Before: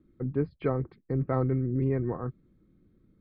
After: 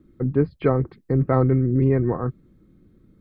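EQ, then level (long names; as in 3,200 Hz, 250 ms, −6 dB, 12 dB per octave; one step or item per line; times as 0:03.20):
notch filter 2,300 Hz, Q 27
+8.5 dB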